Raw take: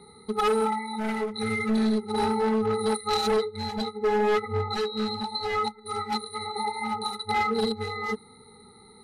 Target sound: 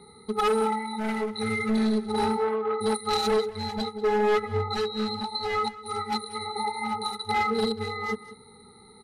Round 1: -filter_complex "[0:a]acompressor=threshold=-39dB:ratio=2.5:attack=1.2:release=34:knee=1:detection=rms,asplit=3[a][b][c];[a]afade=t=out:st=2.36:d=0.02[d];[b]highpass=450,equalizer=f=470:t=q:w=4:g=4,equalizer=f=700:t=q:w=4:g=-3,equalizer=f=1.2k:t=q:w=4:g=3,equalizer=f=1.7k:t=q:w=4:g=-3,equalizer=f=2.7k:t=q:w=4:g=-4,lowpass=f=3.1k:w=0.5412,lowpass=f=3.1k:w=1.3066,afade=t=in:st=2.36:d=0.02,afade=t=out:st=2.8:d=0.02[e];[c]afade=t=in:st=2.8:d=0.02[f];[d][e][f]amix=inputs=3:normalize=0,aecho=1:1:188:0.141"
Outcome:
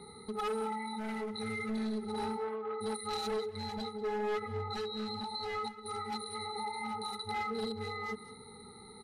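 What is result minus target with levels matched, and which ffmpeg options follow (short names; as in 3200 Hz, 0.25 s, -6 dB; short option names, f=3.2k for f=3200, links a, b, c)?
compressor: peak gain reduction +11.5 dB
-filter_complex "[0:a]asplit=3[a][b][c];[a]afade=t=out:st=2.36:d=0.02[d];[b]highpass=450,equalizer=f=470:t=q:w=4:g=4,equalizer=f=700:t=q:w=4:g=-3,equalizer=f=1.2k:t=q:w=4:g=3,equalizer=f=1.7k:t=q:w=4:g=-3,equalizer=f=2.7k:t=q:w=4:g=-4,lowpass=f=3.1k:w=0.5412,lowpass=f=3.1k:w=1.3066,afade=t=in:st=2.36:d=0.02,afade=t=out:st=2.8:d=0.02[e];[c]afade=t=in:st=2.8:d=0.02[f];[d][e][f]amix=inputs=3:normalize=0,aecho=1:1:188:0.141"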